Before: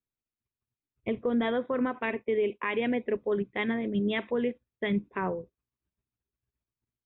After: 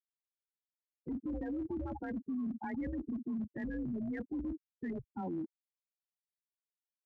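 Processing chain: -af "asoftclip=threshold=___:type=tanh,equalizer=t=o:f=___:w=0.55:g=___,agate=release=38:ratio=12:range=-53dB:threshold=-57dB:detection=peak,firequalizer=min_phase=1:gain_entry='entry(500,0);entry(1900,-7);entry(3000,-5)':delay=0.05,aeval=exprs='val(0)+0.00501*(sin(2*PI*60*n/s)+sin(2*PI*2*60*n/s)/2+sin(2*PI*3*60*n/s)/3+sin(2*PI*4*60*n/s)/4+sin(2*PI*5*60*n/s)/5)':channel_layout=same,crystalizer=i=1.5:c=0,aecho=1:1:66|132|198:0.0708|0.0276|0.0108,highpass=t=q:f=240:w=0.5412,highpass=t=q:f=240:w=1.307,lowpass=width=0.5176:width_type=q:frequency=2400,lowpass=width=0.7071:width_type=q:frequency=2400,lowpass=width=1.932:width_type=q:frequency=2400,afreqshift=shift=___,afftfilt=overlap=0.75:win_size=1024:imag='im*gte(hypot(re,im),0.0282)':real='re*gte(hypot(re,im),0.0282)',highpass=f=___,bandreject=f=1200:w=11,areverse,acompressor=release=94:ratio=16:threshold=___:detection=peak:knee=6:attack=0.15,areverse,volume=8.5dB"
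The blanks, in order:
-28.5dB, 440, 5, -180, 90, -42dB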